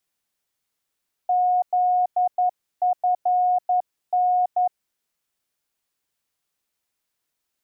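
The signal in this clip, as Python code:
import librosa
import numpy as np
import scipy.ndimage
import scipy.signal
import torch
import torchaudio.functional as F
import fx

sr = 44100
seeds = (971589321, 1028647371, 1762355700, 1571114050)

y = fx.morse(sr, text='ZFN', wpm=11, hz=725.0, level_db=-16.5)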